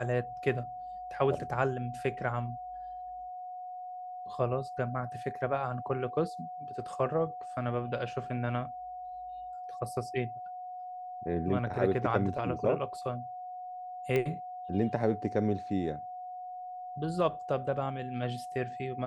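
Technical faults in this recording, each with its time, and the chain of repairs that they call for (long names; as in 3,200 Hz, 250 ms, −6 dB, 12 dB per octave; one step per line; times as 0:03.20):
whistle 730 Hz −39 dBFS
0:14.16: click −18 dBFS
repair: click removal
notch filter 730 Hz, Q 30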